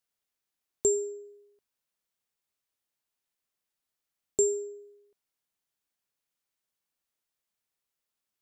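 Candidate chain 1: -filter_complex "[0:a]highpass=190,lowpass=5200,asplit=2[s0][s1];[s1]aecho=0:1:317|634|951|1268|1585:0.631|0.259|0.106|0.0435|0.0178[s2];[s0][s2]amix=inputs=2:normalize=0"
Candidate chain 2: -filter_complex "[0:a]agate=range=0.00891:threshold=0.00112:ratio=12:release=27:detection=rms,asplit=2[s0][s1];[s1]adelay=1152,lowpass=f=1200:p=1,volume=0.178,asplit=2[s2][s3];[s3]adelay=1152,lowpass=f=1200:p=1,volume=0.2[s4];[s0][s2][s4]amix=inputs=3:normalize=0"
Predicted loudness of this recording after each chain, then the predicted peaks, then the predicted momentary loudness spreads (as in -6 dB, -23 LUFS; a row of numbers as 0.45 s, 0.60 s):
-33.0 LUFS, -29.5 LUFS; -16.0 dBFS, -13.5 dBFS; 20 LU, 19 LU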